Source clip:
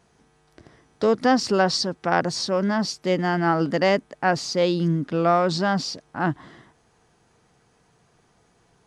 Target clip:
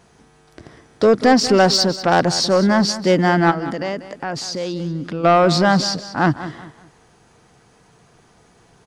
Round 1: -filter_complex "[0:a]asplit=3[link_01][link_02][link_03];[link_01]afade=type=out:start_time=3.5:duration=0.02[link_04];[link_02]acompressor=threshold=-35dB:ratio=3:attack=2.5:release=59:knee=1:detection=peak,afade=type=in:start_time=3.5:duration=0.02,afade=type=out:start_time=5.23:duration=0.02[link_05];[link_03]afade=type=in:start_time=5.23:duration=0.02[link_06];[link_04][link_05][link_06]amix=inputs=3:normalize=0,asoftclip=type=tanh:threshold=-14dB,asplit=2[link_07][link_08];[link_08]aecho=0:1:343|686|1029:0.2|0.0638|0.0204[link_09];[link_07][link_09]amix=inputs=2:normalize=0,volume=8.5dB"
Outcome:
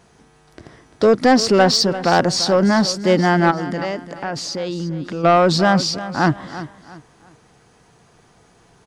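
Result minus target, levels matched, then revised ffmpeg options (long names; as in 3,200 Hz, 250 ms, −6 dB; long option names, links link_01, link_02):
echo 152 ms late
-filter_complex "[0:a]asplit=3[link_01][link_02][link_03];[link_01]afade=type=out:start_time=3.5:duration=0.02[link_04];[link_02]acompressor=threshold=-35dB:ratio=3:attack=2.5:release=59:knee=1:detection=peak,afade=type=in:start_time=3.5:duration=0.02,afade=type=out:start_time=5.23:duration=0.02[link_05];[link_03]afade=type=in:start_time=5.23:duration=0.02[link_06];[link_04][link_05][link_06]amix=inputs=3:normalize=0,asoftclip=type=tanh:threshold=-14dB,asplit=2[link_07][link_08];[link_08]aecho=0:1:191|382|573:0.2|0.0638|0.0204[link_09];[link_07][link_09]amix=inputs=2:normalize=0,volume=8.5dB"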